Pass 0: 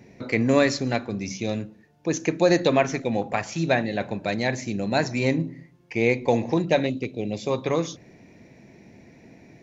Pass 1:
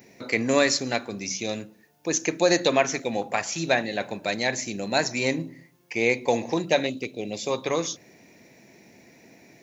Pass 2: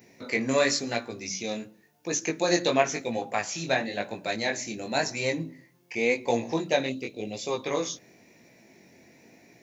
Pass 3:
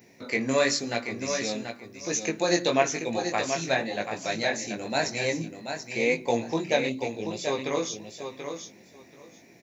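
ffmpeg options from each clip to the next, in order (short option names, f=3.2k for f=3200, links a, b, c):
-af "aemphasis=mode=production:type=bsi"
-af "flanger=delay=17:depth=6.1:speed=0.94"
-af "aecho=1:1:733|1466|2199:0.422|0.0675|0.0108"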